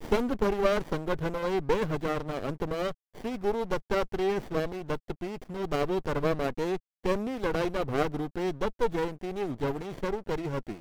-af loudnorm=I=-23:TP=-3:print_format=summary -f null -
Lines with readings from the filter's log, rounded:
Input Integrated:    -31.2 LUFS
Input True Peak:     -13.1 dBTP
Input LRA:             2.2 LU
Input Threshold:     -41.2 LUFS